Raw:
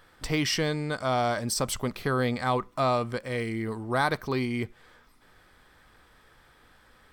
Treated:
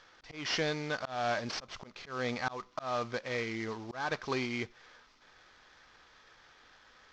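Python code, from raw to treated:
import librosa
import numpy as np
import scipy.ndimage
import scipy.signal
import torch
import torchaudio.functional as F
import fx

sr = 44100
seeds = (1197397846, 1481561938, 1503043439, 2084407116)

y = fx.cvsd(x, sr, bps=32000)
y = fx.low_shelf(y, sr, hz=330.0, db=-11.5)
y = fx.auto_swell(y, sr, attack_ms=259.0)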